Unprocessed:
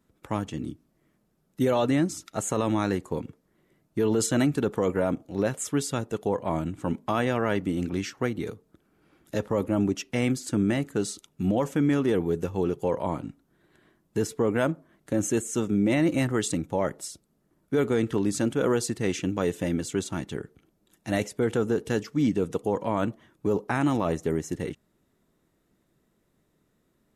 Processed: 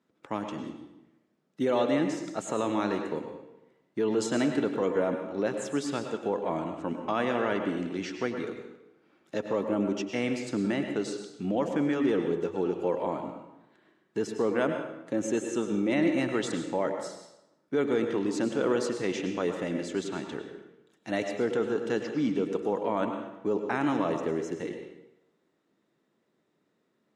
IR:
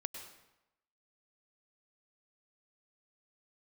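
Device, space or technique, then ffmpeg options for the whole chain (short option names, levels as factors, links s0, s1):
supermarket ceiling speaker: -filter_complex "[0:a]highpass=220,lowpass=5300[s0];[1:a]atrim=start_sample=2205[s1];[s0][s1]afir=irnorm=-1:irlink=0"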